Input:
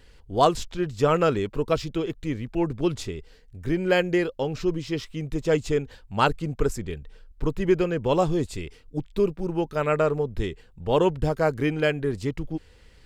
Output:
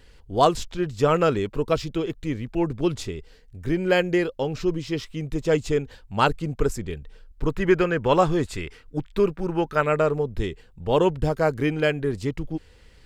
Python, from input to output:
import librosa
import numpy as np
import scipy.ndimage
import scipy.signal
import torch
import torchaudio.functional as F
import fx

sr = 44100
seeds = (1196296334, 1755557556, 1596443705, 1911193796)

y = fx.peak_eq(x, sr, hz=1500.0, db=9.0, octaves=1.4, at=(7.48, 9.81))
y = y * 10.0 ** (1.0 / 20.0)